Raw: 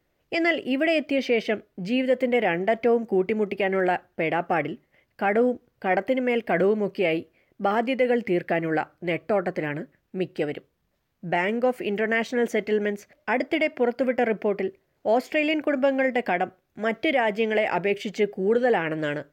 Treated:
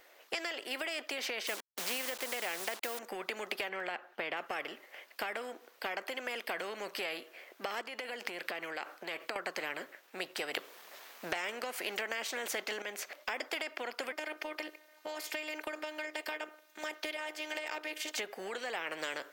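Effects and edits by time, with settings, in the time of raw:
0:01.47–0:02.99: hold until the input has moved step −39 dBFS
0:03.69–0:04.37: bass and treble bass +4 dB, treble −11 dB
0:07.81–0:09.36: downward compressor, threshold −33 dBFS
0:10.54–0:12.82: clip gain +11 dB
0:14.12–0:18.18: phases set to zero 306 Hz
whole clip: Bessel high-pass filter 680 Hz, order 4; downward compressor, threshold −35 dBFS; every bin compressed towards the loudest bin 2 to 1; level +5 dB

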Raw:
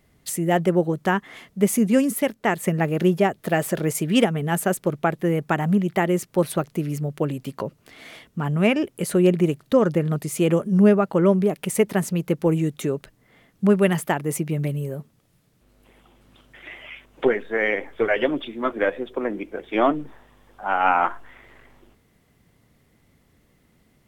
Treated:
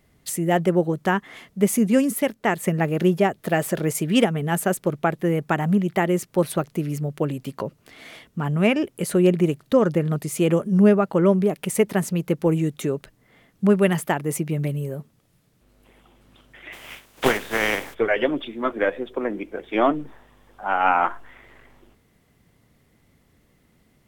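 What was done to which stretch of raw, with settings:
0:16.72–0:17.93: compressing power law on the bin magnitudes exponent 0.46

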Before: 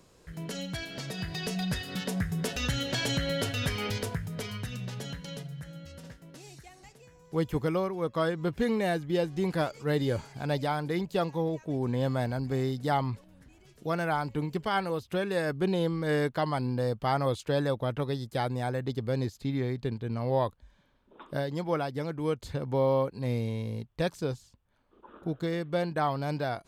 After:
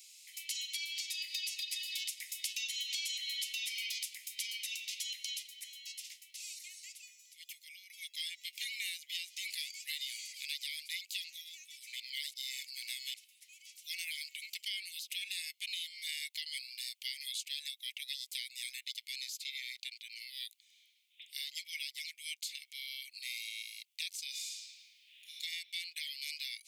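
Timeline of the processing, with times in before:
0:06.30–0:07.90: downward compressor 2 to 1, threshold −49 dBFS
0:12.00–0:13.14: reverse
0:24.29–0:25.33: thrown reverb, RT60 2.5 s, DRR −7.5 dB
whole clip: Butterworth high-pass 2,100 Hz 96 dB per octave; high-shelf EQ 3,400 Hz +7.5 dB; downward compressor, threshold −42 dBFS; level +5.5 dB

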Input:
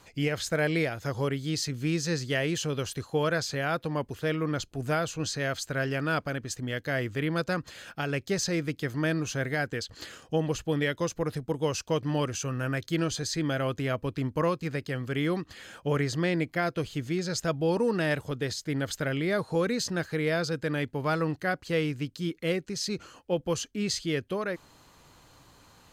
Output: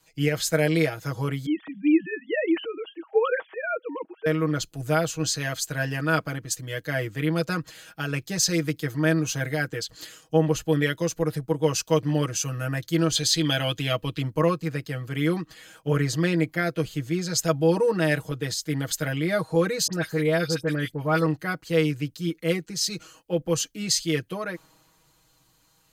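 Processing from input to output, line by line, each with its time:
0:01.46–0:04.26: three sine waves on the formant tracks
0:13.15–0:14.22: parametric band 3,200 Hz +11 dB
0:19.87–0:21.26: all-pass dispersion highs, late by 65 ms, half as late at 2,300 Hz
whole clip: high-shelf EQ 9,200 Hz +11 dB; comb filter 6.3 ms, depth 90%; multiband upward and downward expander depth 40%

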